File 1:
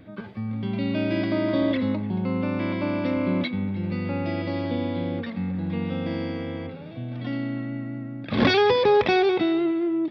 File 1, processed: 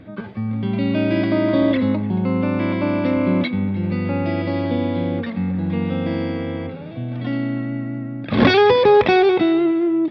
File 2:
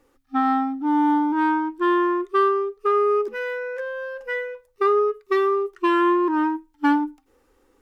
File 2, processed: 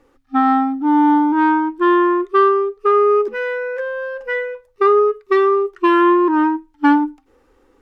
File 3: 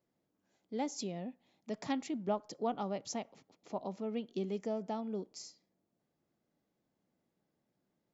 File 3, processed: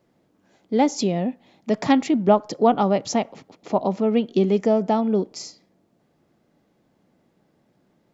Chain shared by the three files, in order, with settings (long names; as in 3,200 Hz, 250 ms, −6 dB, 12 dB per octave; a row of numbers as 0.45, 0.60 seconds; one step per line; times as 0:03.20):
low-pass filter 3,500 Hz 6 dB per octave
normalise the peak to −3 dBFS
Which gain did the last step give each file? +6.0, +6.0, +18.0 decibels